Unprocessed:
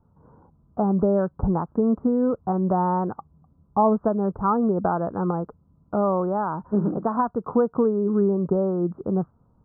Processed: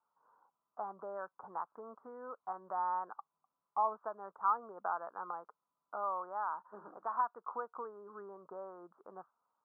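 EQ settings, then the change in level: band-pass 1100 Hz, Q 1.5; differentiator; +9.0 dB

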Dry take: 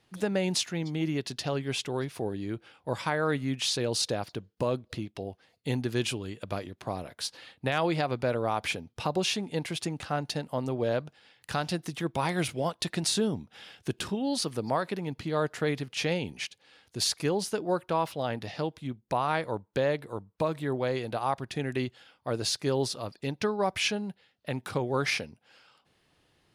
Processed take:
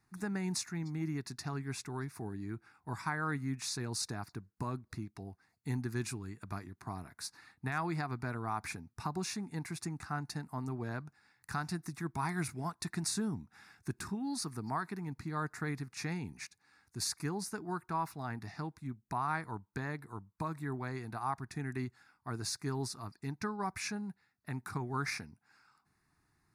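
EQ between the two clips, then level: fixed phaser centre 1300 Hz, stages 4; -3.5 dB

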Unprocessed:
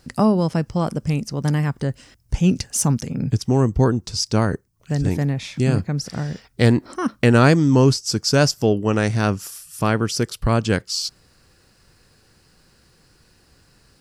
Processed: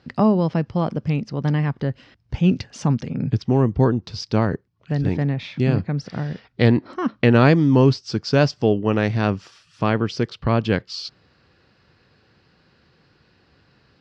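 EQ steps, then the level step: HPF 83 Hz; LPF 4100 Hz 24 dB/oct; dynamic EQ 1400 Hz, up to -4 dB, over -40 dBFS, Q 4.6; 0.0 dB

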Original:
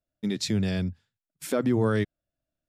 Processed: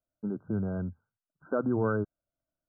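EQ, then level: brick-wall FIR low-pass 1600 Hz; low shelf 480 Hz -6 dB; 0.0 dB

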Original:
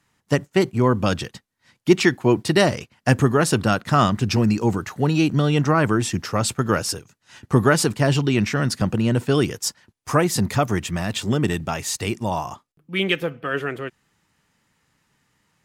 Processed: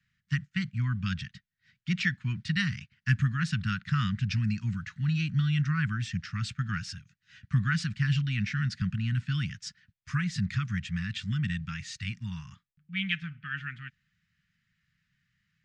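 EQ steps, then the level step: Gaussian blur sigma 1.8 samples; elliptic band-stop 180–1600 Hz, stop band 80 dB; -5.0 dB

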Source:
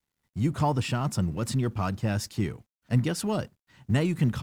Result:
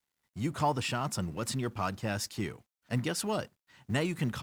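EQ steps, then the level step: low shelf 290 Hz -10.5 dB; 0.0 dB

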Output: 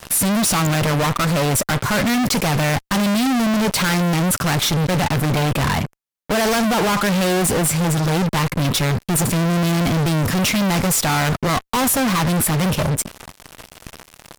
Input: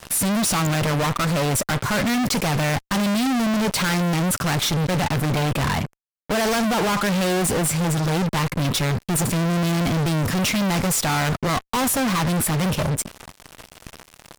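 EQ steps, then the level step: bell 12000 Hz +2.5 dB 0.29 oct; +3.0 dB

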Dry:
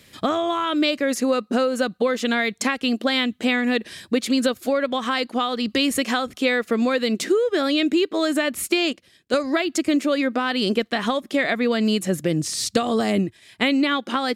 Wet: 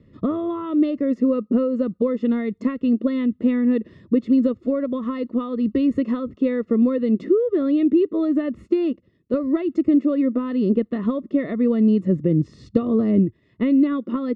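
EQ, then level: running mean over 56 samples; air absorption 120 m; +6.0 dB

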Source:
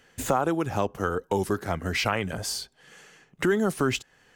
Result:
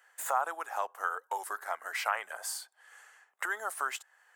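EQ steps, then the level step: HPF 760 Hz 24 dB/oct; band shelf 3800 Hz -9.5 dB; -1.5 dB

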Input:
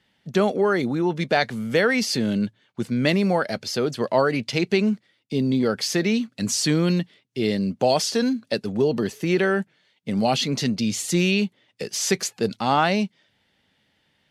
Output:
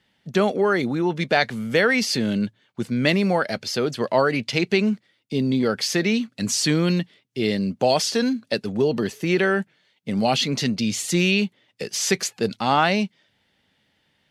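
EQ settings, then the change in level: dynamic EQ 2400 Hz, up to +3 dB, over -38 dBFS, Q 0.72; 0.0 dB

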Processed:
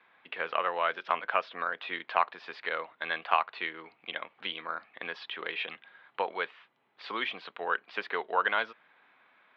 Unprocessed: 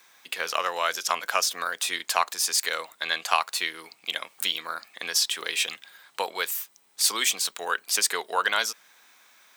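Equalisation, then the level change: LPF 3600 Hz 24 dB/oct; air absorption 420 m; 0.0 dB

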